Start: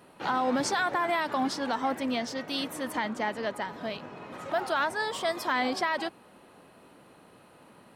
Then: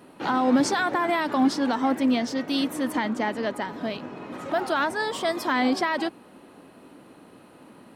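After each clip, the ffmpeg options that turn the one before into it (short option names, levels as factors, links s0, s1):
-af "equalizer=f=280:w=1.6:g=8,volume=1.33"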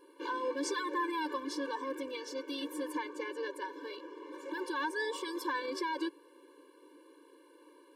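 -af "alimiter=limit=0.141:level=0:latency=1:release=18,afftfilt=real='re*eq(mod(floor(b*sr/1024/300),2),1)':imag='im*eq(mod(floor(b*sr/1024/300),2),1)':win_size=1024:overlap=0.75,volume=0.501"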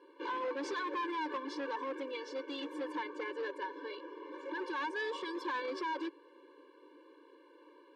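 -af "volume=47.3,asoftclip=hard,volume=0.0211,highpass=290,lowpass=3500,volume=1.12"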